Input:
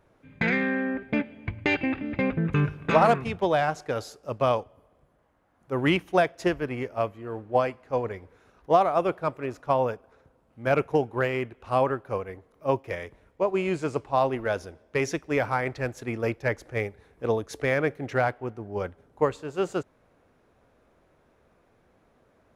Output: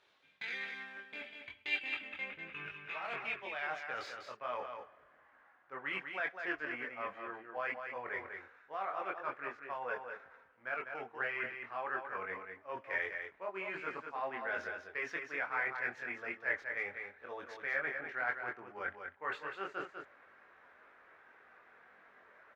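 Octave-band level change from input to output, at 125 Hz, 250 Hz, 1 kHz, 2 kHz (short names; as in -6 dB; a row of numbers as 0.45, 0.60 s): -31.0, -24.0, -13.5, -4.5 dB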